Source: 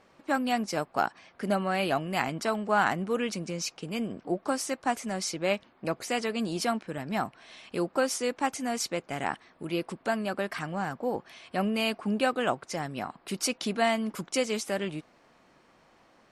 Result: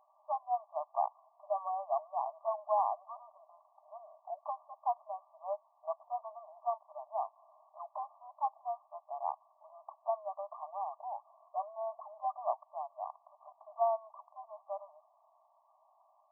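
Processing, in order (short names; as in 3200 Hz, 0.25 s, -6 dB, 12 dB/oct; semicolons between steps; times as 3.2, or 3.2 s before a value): brick-wall FIR band-pass 590–1200 Hz; gain -3 dB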